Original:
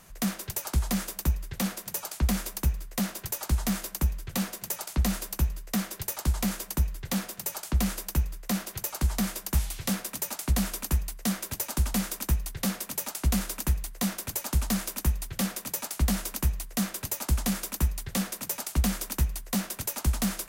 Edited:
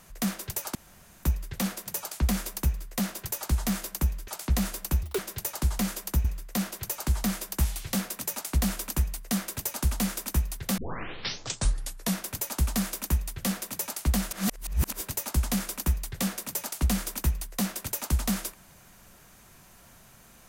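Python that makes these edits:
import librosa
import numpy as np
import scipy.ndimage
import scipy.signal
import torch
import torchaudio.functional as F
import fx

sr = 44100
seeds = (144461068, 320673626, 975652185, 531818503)

y = fx.edit(x, sr, fx.room_tone_fill(start_s=0.75, length_s=0.48),
    fx.cut(start_s=4.28, length_s=0.48),
    fx.speed_span(start_s=5.51, length_s=0.31, speed=1.98),
    fx.cut(start_s=6.88, length_s=1.31),
    fx.tape_start(start_s=12.72, length_s=1.39),
    fx.reverse_span(start_s=16.26, length_s=0.69), tone=tone)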